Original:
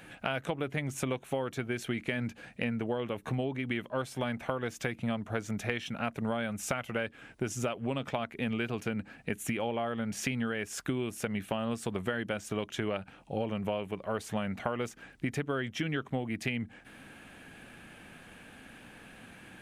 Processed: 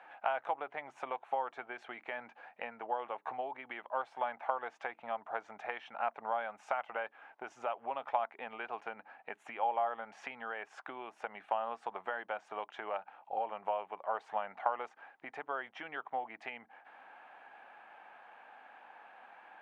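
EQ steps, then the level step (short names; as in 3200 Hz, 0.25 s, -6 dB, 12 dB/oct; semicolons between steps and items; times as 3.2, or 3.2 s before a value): ladder band-pass 930 Hz, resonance 60%; +10.0 dB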